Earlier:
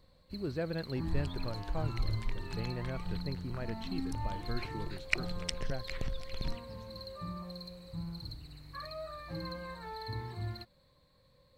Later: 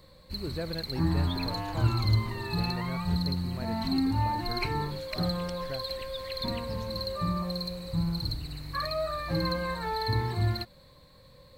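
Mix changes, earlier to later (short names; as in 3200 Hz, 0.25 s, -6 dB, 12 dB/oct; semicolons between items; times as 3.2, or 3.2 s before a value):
first sound +11.5 dB; second sound -12.0 dB; master: add high shelf 9900 Hz +4 dB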